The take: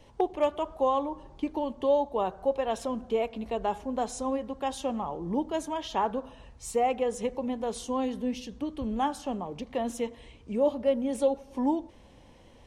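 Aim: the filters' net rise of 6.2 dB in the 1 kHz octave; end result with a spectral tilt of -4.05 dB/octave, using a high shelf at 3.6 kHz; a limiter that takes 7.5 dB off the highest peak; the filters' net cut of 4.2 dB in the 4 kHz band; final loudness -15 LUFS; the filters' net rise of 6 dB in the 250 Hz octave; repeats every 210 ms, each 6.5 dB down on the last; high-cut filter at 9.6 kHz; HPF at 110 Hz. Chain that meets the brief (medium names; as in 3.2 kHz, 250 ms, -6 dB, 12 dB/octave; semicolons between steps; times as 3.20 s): high-pass 110 Hz; low-pass 9.6 kHz; peaking EQ 250 Hz +6.5 dB; peaking EQ 1 kHz +8 dB; treble shelf 3.6 kHz -5 dB; peaking EQ 4 kHz -3.5 dB; peak limiter -16.5 dBFS; feedback delay 210 ms, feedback 47%, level -6.5 dB; trim +12 dB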